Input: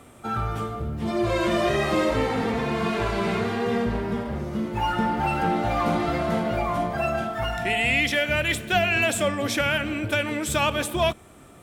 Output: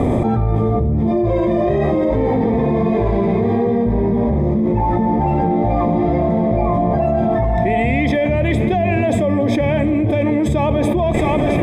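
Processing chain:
moving average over 31 samples
feedback echo with a high-pass in the loop 669 ms, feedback 72%, high-pass 420 Hz, level −20 dB
envelope flattener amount 100%
level +6 dB

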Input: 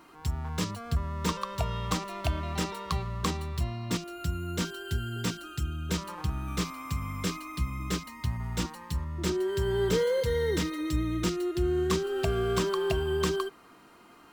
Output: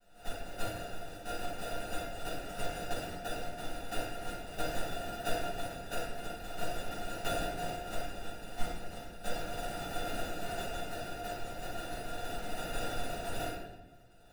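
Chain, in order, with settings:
all-pass phaser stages 2, 3.5 Hz, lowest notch 110–1,200 Hz
speech leveller within 4 dB 0.5 s
meter weighting curve ITU-R 468
gate on every frequency bin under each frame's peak −25 dB weak
decimation without filtering 41×
low-shelf EQ 440 Hz −10.5 dB
tuned comb filter 700 Hz, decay 0.15 s, harmonics all, mix 90%
rectangular room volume 470 cubic metres, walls mixed, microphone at 7.5 metres
level +17.5 dB

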